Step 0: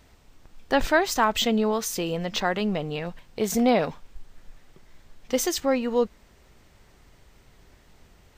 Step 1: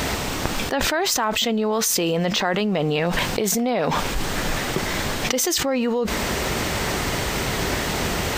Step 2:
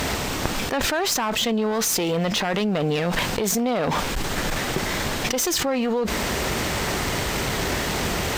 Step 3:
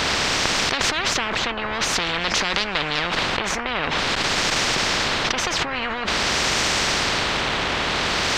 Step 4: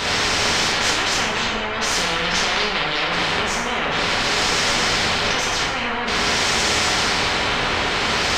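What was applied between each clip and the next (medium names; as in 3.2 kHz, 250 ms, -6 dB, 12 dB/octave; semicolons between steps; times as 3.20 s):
high-pass 160 Hz 6 dB/octave; level flattener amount 100%; trim -4.5 dB
one-sided clip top -22 dBFS
LFO low-pass sine 0.49 Hz 1–2.1 kHz; spectrum-flattening compressor 10:1
plate-style reverb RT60 1 s, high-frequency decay 0.8×, DRR -4.5 dB; trim -3.5 dB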